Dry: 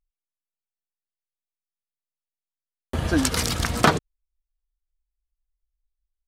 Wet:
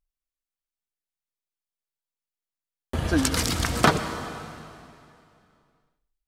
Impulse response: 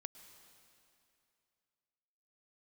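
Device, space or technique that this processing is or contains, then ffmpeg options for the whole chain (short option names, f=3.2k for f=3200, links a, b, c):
stairwell: -filter_complex "[1:a]atrim=start_sample=2205[a];[0:a][a]afir=irnorm=-1:irlink=0,volume=4dB"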